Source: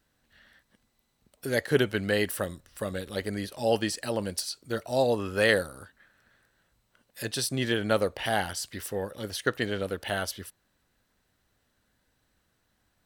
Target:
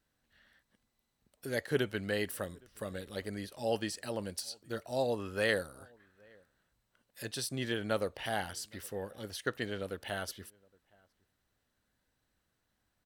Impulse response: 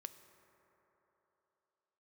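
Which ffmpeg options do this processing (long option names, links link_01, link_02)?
-filter_complex "[0:a]asplit=2[link_01][link_02];[link_02]adelay=816.3,volume=-28dB,highshelf=frequency=4000:gain=-18.4[link_03];[link_01][link_03]amix=inputs=2:normalize=0,volume=-7.5dB"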